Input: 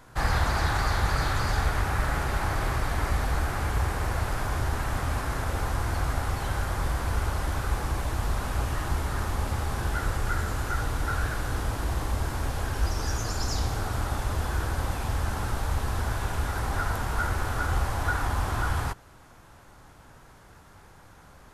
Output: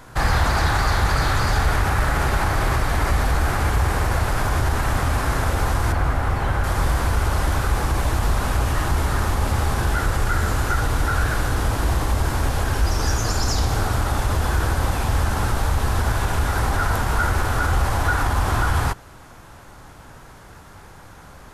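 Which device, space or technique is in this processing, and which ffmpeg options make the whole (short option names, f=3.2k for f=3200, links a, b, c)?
clipper into limiter: -filter_complex "[0:a]asoftclip=type=hard:threshold=-17dB,alimiter=limit=-19.5dB:level=0:latency=1:release=37,asettb=1/sr,asplit=3[a][b][c];[a]atrim=end=5.924[d];[b]atrim=start=5.92:end=6.64,asetpts=PTS-STARTPTS,afade=t=in:d=0.004:c=qsin,afade=t=out:st=0.716:d=0.004:c=qsin,acrossover=split=2800[e][f];[f]acompressor=threshold=-53dB:ratio=4:attack=1:release=60[g];[e][g]amix=inputs=2:normalize=0[h];[c]atrim=start=6.636[i];[d][h]acrossfade=d=0.004:c1=hsin:c2=qsin[j];[j][i]acrossfade=d=0.004:c1=qsin:c2=hsin,volume=8.5dB"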